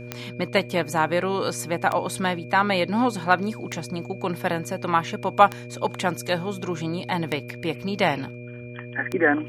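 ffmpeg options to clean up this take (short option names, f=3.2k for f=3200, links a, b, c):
-af "adeclick=t=4,bandreject=f=121:t=h:w=4,bandreject=f=242:t=h:w=4,bandreject=f=363:t=h:w=4,bandreject=f=484:t=h:w=4,bandreject=f=605:t=h:w=4,bandreject=f=2.4k:w=30"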